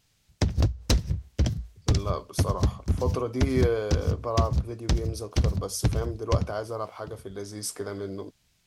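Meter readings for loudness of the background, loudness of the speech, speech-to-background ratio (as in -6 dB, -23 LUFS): -28.5 LUFS, -32.5 LUFS, -4.0 dB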